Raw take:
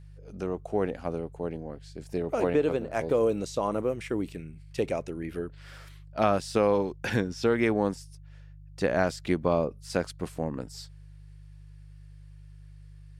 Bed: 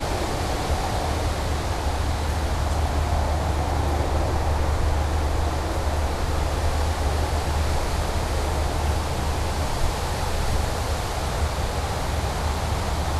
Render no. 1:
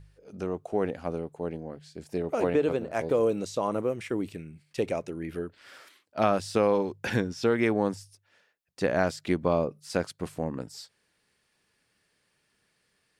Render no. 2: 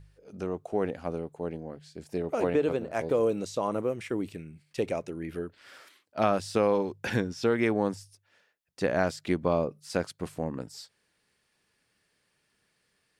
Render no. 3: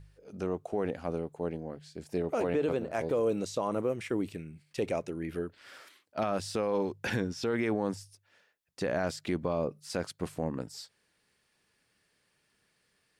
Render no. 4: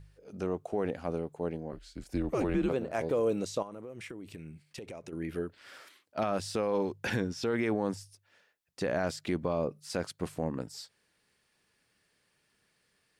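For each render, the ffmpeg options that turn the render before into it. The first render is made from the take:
-af "bandreject=f=50:t=h:w=4,bandreject=f=100:t=h:w=4,bandreject=f=150:t=h:w=4"
-af "volume=-1dB"
-af "alimiter=limit=-21dB:level=0:latency=1:release=18"
-filter_complex "[0:a]asettb=1/sr,asplit=3[a][b][c];[a]atrim=end=1.724[d];[b]atrim=start=1.72:end=2.69,asetpts=PTS-STARTPTS,afade=t=in:d=0.004:c=qsin,afade=t=out:st=0.966:d=0.004:c=qsin,afreqshift=-110[e];[c]atrim=start=2.686[f];[d][e]acrossfade=d=0.004:c1=hsin:c2=qsin[g];[g][f]acrossfade=d=0.004:c1=qsin:c2=hsin,asettb=1/sr,asplit=3[h][i][j];[h]atrim=end=3.624[k];[i]atrim=start=3.62:end=5.13,asetpts=PTS-STARTPTS,afade=t=in:d=0.004:c=qsin,afade=t=out:st=1.506:d=0.004:c=qsin,acompressor=threshold=-39dB:ratio=16:attack=3.2:release=140:knee=1:detection=peak[l];[j]atrim=start=5.126[m];[k][l]acrossfade=d=0.004:c1=hsin:c2=qsin[n];[n][m]acrossfade=d=0.004:c1=qsin:c2=hsin"

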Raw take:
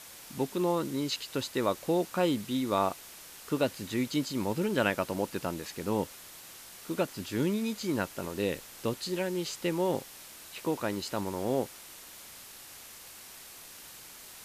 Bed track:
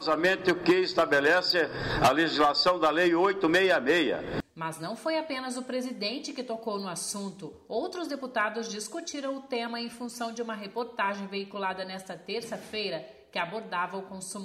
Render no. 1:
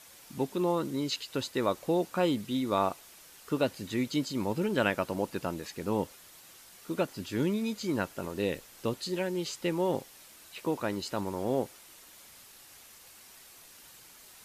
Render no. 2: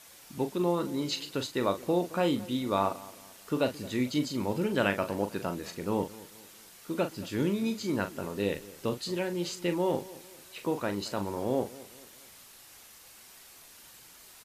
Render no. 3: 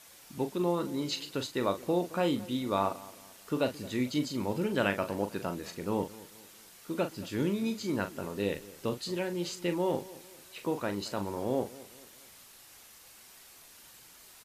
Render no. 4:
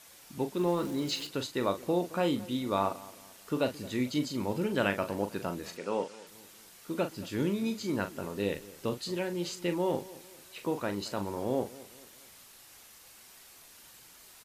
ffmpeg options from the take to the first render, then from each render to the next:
-af "afftdn=nr=6:nf=-49"
-filter_complex "[0:a]asplit=2[a][b];[b]adelay=40,volume=-9dB[c];[a][c]amix=inputs=2:normalize=0,asplit=2[d][e];[e]adelay=220,lowpass=f=2k:p=1,volume=-19dB,asplit=2[f][g];[g]adelay=220,lowpass=f=2k:p=1,volume=0.41,asplit=2[h][i];[i]adelay=220,lowpass=f=2k:p=1,volume=0.41[j];[d][f][h][j]amix=inputs=4:normalize=0"
-af "volume=-1.5dB"
-filter_complex "[0:a]asettb=1/sr,asplit=3[a][b][c];[a]atrim=end=0.574[d];[b]atrim=start=0.57:end=1.27,asetpts=PTS-STARTPTS,afade=t=in:d=0.004:c=qsin,afade=t=out:st=0.696:d=0.004:c=qsin,aeval=exprs='val(0)+0.5*0.00708*sgn(val(0))':c=same[e];[c]atrim=start=1.266[f];[d][e]acrossfade=d=0.004:c1=hsin:c2=qsin[g];[g][f]acrossfade=d=0.004:c1=qsin:c2=hsin,asettb=1/sr,asplit=3[h][i][j];[h]atrim=end=5.774[k];[i]atrim=start=5.77:end=6.27,asetpts=PTS-STARTPTS,afade=t=in:d=0.004:c=qsin,afade=t=out:st=0.496:d=0.004:c=qsin,highpass=280,equalizer=f=320:t=q:w=4:g=-5,equalizer=f=540:t=q:w=4:g=5,equalizer=f=1.4k:t=q:w=4:g=5,equalizer=f=2.6k:t=q:w=4:g=5,equalizer=f=5.2k:t=q:w=4:g=3,lowpass=f=8.8k:w=0.5412,lowpass=f=8.8k:w=1.3066[l];[j]atrim=start=6.266[m];[k][l]acrossfade=d=0.004:c1=hsin:c2=qsin[n];[n][m]acrossfade=d=0.004:c1=qsin:c2=hsin"

